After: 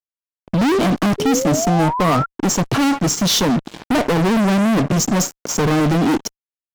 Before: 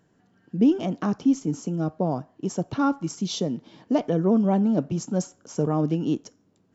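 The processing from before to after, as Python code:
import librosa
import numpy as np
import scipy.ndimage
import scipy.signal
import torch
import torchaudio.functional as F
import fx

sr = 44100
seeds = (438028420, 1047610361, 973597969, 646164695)

y = fx.fuzz(x, sr, gain_db=38.0, gate_db=-47.0)
y = fx.spec_paint(y, sr, seeds[0], shape='rise', start_s=1.18, length_s=1.08, low_hz=400.0, high_hz=1400.0, level_db=-21.0)
y = y * librosa.db_to_amplitude(-1.0)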